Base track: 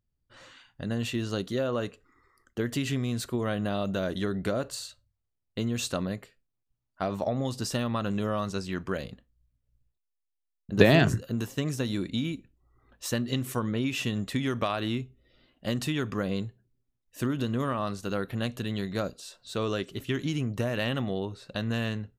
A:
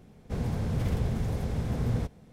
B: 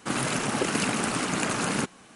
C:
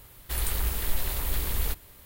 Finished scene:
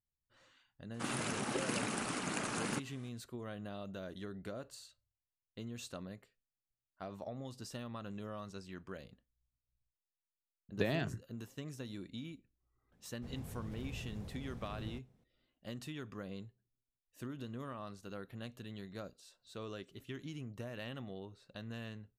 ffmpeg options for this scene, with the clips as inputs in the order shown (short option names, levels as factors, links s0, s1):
-filter_complex "[0:a]volume=0.168[s0];[2:a]atrim=end=2.15,asetpts=PTS-STARTPTS,volume=0.282,afade=t=in:d=0.004:c=hsin,afade=t=out:st=2.146:d=0.004:c=hsin,adelay=940[s1];[1:a]atrim=end=2.32,asetpts=PTS-STARTPTS,volume=0.133,afade=t=in:d=0.004:c=hsin,afade=t=out:st=2.316:d=0.004:c=hsin,adelay=12920[s2];[s0][s1][s2]amix=inputs=3:normalize=0"